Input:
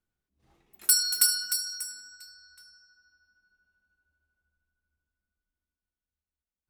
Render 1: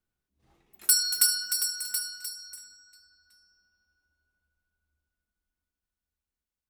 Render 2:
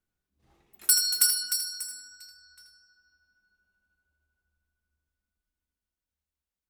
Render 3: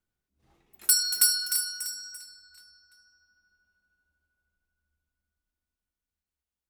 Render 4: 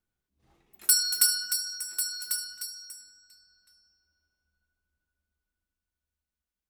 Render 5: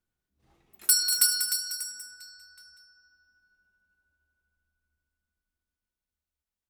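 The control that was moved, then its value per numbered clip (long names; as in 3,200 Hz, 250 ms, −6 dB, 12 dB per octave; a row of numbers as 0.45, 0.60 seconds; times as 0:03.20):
single-tap delay, delay time: 727, 82, 340, 1,095, 192 milliseconds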